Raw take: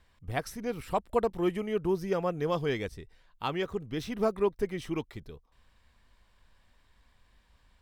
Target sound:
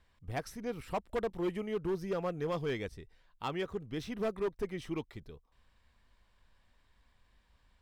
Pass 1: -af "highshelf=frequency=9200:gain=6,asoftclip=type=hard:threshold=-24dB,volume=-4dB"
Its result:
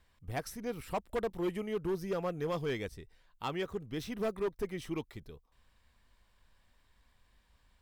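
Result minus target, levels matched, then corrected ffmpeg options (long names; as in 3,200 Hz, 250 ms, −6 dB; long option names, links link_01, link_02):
8,000 Hz band +3.5 dB
-af "highshelf=frequency=9200:gain=-5,asoftclip=type=hard:threshold=-24dB,volume=-4dB"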